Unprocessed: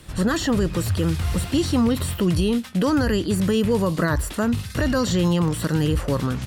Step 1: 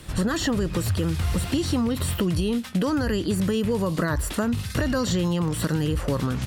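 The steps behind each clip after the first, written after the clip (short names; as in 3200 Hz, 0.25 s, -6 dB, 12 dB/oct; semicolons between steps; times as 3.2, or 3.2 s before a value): compressor, threshold -23 dBFS, peak gain reduction 7.5 dB; gain +2.5 dB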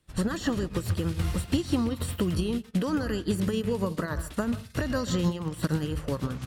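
on a send at -11 dB: reverb RT60 0.55 s, pre-delay 0.126 s; on the sum: upward expander 2.5:1, over -38 dBFS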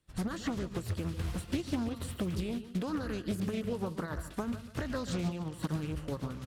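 feedback echo 0.144 s, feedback 33%, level -13 dB; Doppler distortion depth 0.46 ms; gain -7 dB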